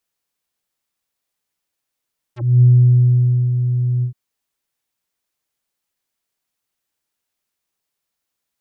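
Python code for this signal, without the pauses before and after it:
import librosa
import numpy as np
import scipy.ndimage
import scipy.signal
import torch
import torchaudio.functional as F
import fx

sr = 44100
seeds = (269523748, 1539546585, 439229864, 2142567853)

y = fx.sub_voice(sr, note=47, wave='square', cutoff_hz=210.0, q=1.4, env_oct=6.0, env_s=0.06, attack_ms=257.0, decay_s=0.89, sustain_db=-8.5, release_s=0.1, note_s=1.67, slope=24)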